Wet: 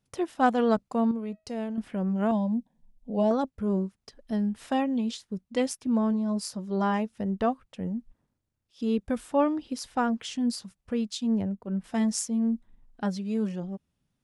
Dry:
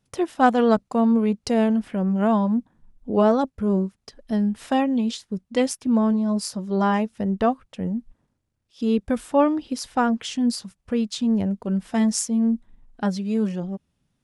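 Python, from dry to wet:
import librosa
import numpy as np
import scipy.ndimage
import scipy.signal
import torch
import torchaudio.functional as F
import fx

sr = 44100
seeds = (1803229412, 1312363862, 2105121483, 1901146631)

y = fx.comb_fb(x, sr, f0_hz=640.0, decay_s=0.34, harmonics='all', damping=0.0, mix_pct=60, at=(1.11, 1.78))
y = fx.fixed_phaser(y, sr, hz=350.0, stages=6, at=(2.31, 3.31))
y = fx.band_widen(y, sr, depth_pct=70, at=(11.13, 11.84))
y = y * 10.0 ** (-5.5 / 20.0)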